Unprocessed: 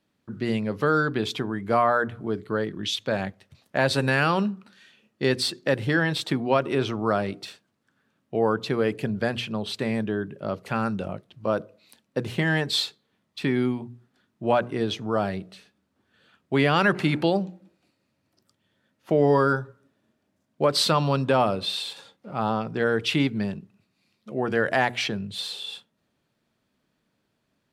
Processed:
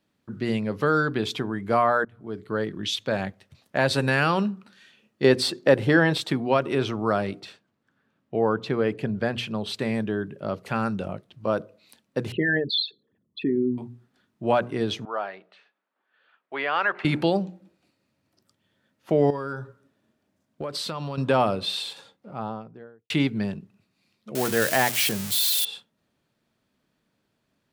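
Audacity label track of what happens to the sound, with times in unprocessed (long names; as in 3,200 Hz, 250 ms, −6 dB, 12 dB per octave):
2.050000	2.620000	fade in, from −23.5 dB
5.240000	6.180000	parametric band 530 Hz +6.5 dB 2.7 octaves
7.400000	9.380000	low-pass filter 3,100 Hz 6 dB per octave
12.320000	13.780000	spectral envelope exaggerated exponent 3
15.050000	17.050000	band-pass filter 730–2,300 Hz
19.300000	21.180000	downward compressor 4 to 1, threshold −29 dBFS
21.810000	23.100000	fade out and dull
24.350000	25.650000	spike at every zero crossing of −16 dBFS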